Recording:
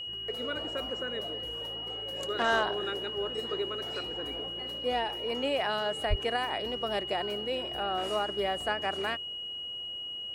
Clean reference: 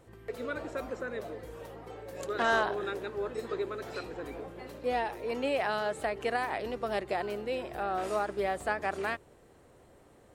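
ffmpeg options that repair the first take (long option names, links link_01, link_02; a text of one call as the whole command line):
ffmpeg -i in.wav -filter_complex "[0:a]bandreject=frequency=2900:width=30,asplit=3[link_01][link_02][link_03];[link_01]afade=type=out:start_time=6.09:duration=0.02[link_04];[link_02]highpass=frequency=140:width=0.5412,highpass=frequency=140:width=1.3066,afade=type=in:start_time=6.09:duration=0.02,afade=type=out:start_time=6.21:duration=0.02[link_05];[link_03]afade=type=in:start_time=6.21:duration=0.02[link_06];[link_04][link_05][link_06]amix=inputs=3:normalize=0" out.wav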